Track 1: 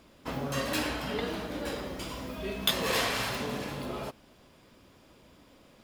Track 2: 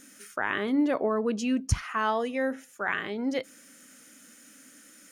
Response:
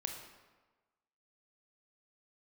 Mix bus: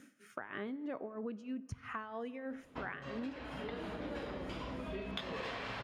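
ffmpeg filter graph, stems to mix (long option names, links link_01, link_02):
-filter_complex "[0:a]lowpass=3000,adelay=2500,volume=-0.5dB[link_01];[1:a]highpass=87,bass=frequency=250:gain=5,treble=frequency=4000:gain=-13,tremolo=f=3.1:d=0.83,volume=-5dB,asplit=3[link_02][link_03][link_04];[link_03]volume=-13dB[link_05];[link_04]apad=whole_len=367476[link_06];[link_01][link_06]sidechaincompress=threshold=-40dB:ratio=8:attack=35:release=1300[link_07];[2:a]atrim=start_sample=2205[link_08];[link_05][link_08]afir=irnorm=-1:irlink=0[link_09];[link_07][link_02][link_09]amix=inputs=3:normalize=0,acompressor=threshold=-38dB:ratio=10"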